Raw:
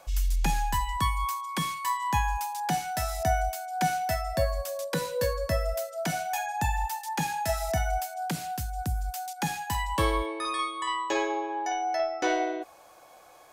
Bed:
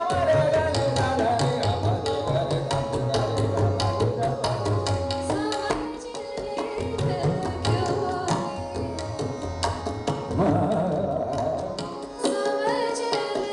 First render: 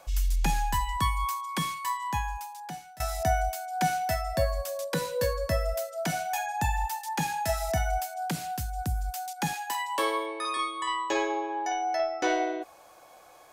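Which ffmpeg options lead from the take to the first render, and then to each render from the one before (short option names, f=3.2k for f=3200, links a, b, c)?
-filter_complex "[0:a]asettb=1/sr,asplit=3[a][b][c];[a]atrim=end=9.534[d];[b]atrim=start=9.53:end=10.57,asetpts=PTS-STARTPTS,afade=t=in:d=0.004:c=qsin,afade=t=out:st=1.036:d=0.004:c=qsin,highpass=f=350:w=0.5412,highpass=f=350:w=1.3066[e];[c]atrim=start=10.566[f];[d][e]acrossfade=d=0.004:c1=hsin:c2=qsin[g];[g][f]acrossfade=d=0.004:c1=qsin:c2=hsin,asplit=2[h][i];[h]atrim=end=3,asetpts=PTS-STARTPTS,afade=t=out:st=1.58:d=1.42:silence=0.0944061[j];[i]atrim=start=3,asetpts=PTS-STARTPTS,afade=t=in:d=0.004:c=hsin:silence=0.0944061[k];[j][k]concat=n=2:v=0:a=1"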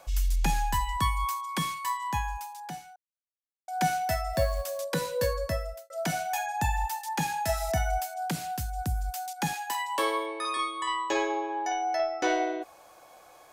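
-filter_complex "[0:a]asettb=1/sr,asplit=3[a][b][c];[a]atrim=end=4.334[d];[b]atrim=start=4.33:end=4.82,asetpts=PTS-STARTPTS,afade=t=in:d=0.004:c=qsin,afade=t=out:st=0.486:d=0.004:c=qsin,acrusher=bits=6:mode=log:mix=0:aa=0.000001[e];[c]atrim=start=4.816[f];[d][e]acrossfade=d=0.004:c1=hsin:c2=qsin[g];[g][f]acrossfade=d=0.004:c1=qsin:c2=hsin,asplit=4[h][i][j][k];[h]atrim=end=2.96,asetpts=PTS-STARTPTS,afade=t=out:st=2.956:d=0.004:c=hsin[l];[i]atrim=start=2.96:end=3.68,asetpts=PTS-STARTPTS,volume=0[m];[j]atrim=start=3.68:end=5.9,asetpts=PTS-STARTPTS,afade=t=in:d=0.004:c=hsin,afade=t=out:st=1.7:d=0.52[n];[k]atrim=start=5.9,asetpts=PTS-STARTPTS,afade=t=in:d=0.004:c=hsin[o];[l][m][n][o]concat=n=4:v=0:a=1"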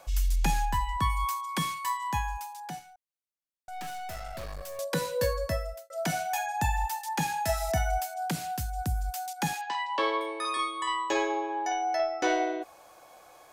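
-filter_complex "[0:a]asettb=1/sr,asplit=3[a][b][c];[a]atrim=end=0.654[d];[b]atrim=start=0.65:end=1.1,asetpts=PTS-STARTPTS,afade=t=in:d=0.004:c=qsin,afade=t=out:st=0.446:d=0.004:c=qsin,highshelf=f=3.6k:g=-8.5[e];[c]atrim=start=1.096[f];[d][e]acrossfade=d=0.004:c1=hsin:c2=qsin[g];[g][f]acrossfade=d=0.004:c1=qsin:c2=hsin,asettb=1/sr,asplit=3[h][i][j];[h]atrim=end=2.794[k];[i]atrim=start=2.79:end=4.79,asetpts=PTS-STARTPTS,afade=t=in:d=0.004:c=qsin,afade=t=out:st=1.996:d=0.004:c=qsin,aeval=exprs='(tanh(70.8*val(0)+0.6)-tanh(0.6))/70.8':c=same[l];[j]atrim=start=4.786[m];[k][l]acrossfade=d=0.004:c1=hsin:c2=qsin[n];[n][m]acrossfade=d=0.004:c1=qsin:c2=hsin,asettb=1/sr,asplit=3[o][p][q];[o]atrim=end=9.614[r];[p]atrim=start=9.61:end=10.21,asetpts=PTS-STARTPTS,afade=t=in:d=0.004:c=qsin,afade=t=out:st=0.596:d=0.004:c=qsin,lowpass=f=4.9k:w=0.5412,lowpass=f=4.9k:w=1.3066[s];[q]atrim=start=10.206[t];[r][s]acrossfade=d=0.004:c1=hsin:c2=qsin[u];[u][t]acrossfade=d=0.004:c1=qsin:c2=hsin"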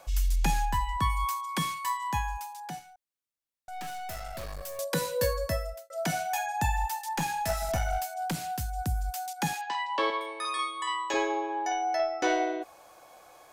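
-filter_complex "[0:a]asettb=1/sr,asplit=3[a][b][c];[a]atrim=end=4.094[d];[b]atrim=start=4.09:end=5.7,asetpts=PTS-STARTPTS,afade=t=in:d=0.004:c=qsin,afade=t=out:st=1.606:d=0.004:c=qsin,highshelf=f=7.4k:g=5.5[e];[c]atrim=start=5.696[f];[d][e]acrossfade=d=0.004:c1=hsin:c2=qsin[g];[g][f]acrossfade=d=0.004:c1=qsin:c2=hsin,asplit=3[h][i][j];[h]afade=t=out:st=7.06:d=0.02[k];[i]aeval=exprs='clip(val(0),-1,0.0398)':c=same,afade=t=in:st=7.06:d=0.02,afade=t=out:st=8.6:d=0.02[l];[j]afade=t=in:st=8.6:d=0.02[m];[k][l][m]amix=inputs=3:normalize=0,asettb=1/sr,asplit=3[n][o][p];[n]atrim=end=10.104[q];[o]atrim=start=10.1:end=11.14,asetpts=PTS-STARTPTS,afade=t=in:d=0.004:c=qsin,afade=t=out:st=1.036:d=0.004:c=qsin,highpass=f=680:p=1[r];[p]atrim=start=11.136[s];[q][r]acrossfade=d=0.004:c1=hsin:c2=qsin[t];[t][s]acrossfade=d=0.004:c1=qsin:c2=hsin"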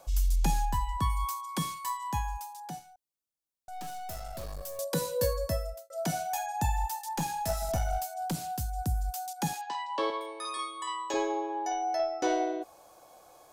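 -af "equalizer=f=2k:t=o:w=1.5:g=-9"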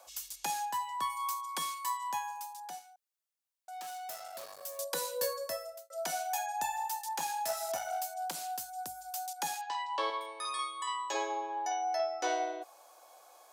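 -af "highpass=660"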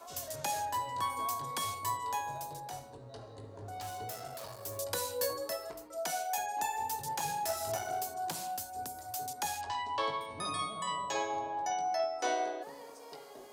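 -filter_complex "[1:a]volume=-24.5dB[a];[0:a][a]amix=inputs=2:normalize=0"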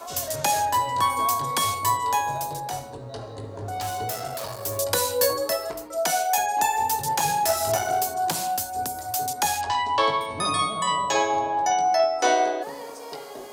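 -af "volume=12dB"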